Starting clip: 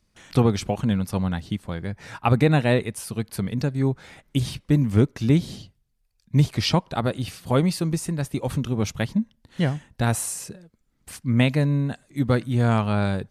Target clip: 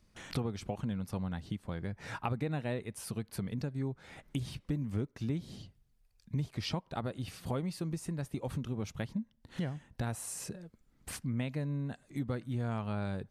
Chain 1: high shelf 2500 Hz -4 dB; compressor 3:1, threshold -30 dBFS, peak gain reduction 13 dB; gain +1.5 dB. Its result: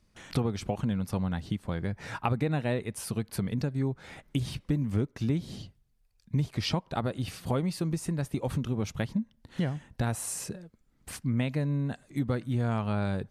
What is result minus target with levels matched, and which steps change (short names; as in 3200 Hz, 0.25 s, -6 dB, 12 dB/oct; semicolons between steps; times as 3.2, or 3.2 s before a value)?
compressor: peak gain reduction -6.5 dB
change: compressor 3:1, threshold -39.5 dBFS, peak gain reduction 19.5 dB